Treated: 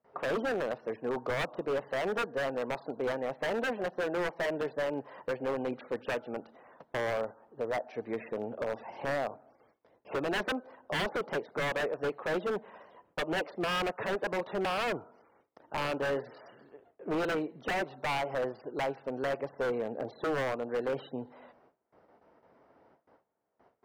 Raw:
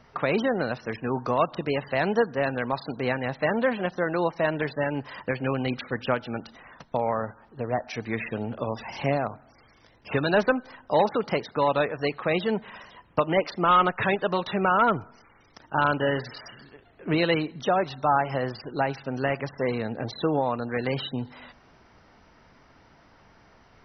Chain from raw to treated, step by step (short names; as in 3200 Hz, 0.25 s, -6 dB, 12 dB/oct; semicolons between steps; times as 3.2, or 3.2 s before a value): gate with hold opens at -46 dBFS; band-pass 520 Hz, Q 1.4; wavefolder -25.5 dBFS